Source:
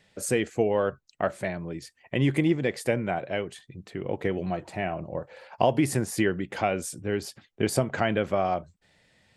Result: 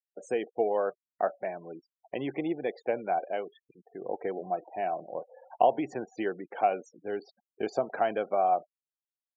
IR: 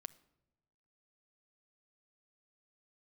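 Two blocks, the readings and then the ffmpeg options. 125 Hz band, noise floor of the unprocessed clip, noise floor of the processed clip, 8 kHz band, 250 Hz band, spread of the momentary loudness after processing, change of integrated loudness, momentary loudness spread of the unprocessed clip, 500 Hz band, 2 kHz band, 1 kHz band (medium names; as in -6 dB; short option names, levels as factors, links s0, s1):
-20.0 dB, -69 dBFS, under -85 dBFS, under -20 dB, -9.0 dB, 14 LU, -3.5 dB, 12 LU, -2.5 dB, -8.5 dB, +2.0 dB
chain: -af "highpass=330,equalizer=f=450:t=q:w=4:g=3,equalizer=f=740:t=q:w=4:g=9,equalizer=f=2000:t=q:w=4:g=-7,equalizer=f=3000:t=q:w=4:g=-5,equalizer=f=4900:t=q:w=4:g=-8,lowpass=f=5700:w=0.5412,lowpass=f=5700:w=1.3066,afftfilt=real='re*gte(hypot(re,im),0.0126)':imag='im*gte(hypot(re,im),0.0126)':win_size=1024:overlap=0.75,volume=0.562"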